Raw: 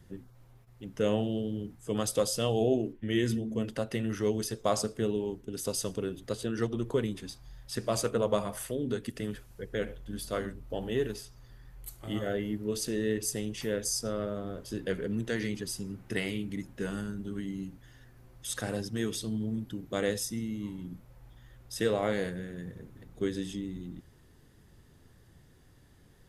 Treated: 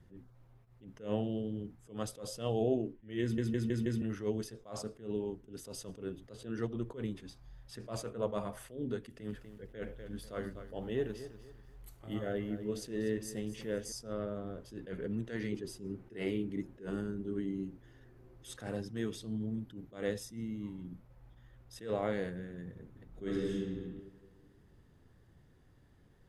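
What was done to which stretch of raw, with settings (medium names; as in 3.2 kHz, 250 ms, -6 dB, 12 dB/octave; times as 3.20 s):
3.22 s: stutter in place 0.16 s, 5 plays
9.02–13.92 s: bit-crushed delay 244 ms, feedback 35%, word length 9-bit, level -13 dB
15.52–18.57 s: peaking EQ 370 Hz +10 dB
23.08–23.52 s: reverb throw, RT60 1.7 s, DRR -3.5 dB
whole clip: treble shelf 3.7 kHz -11 dB; attacks held to a fixed rise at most 160 dB/s; trim -4 dB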